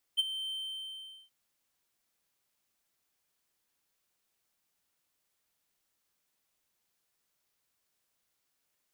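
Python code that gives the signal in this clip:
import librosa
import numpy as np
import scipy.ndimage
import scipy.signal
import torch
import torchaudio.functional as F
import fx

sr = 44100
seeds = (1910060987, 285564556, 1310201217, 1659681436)

y = fx.adsr_tone(sr, wave='triangle', hz=3110.0, attack_ms=25.0, decay_ms=24.0, sustain_db=-13.0, held_s=0.33, release_ms=796.0, level_db=-19.5)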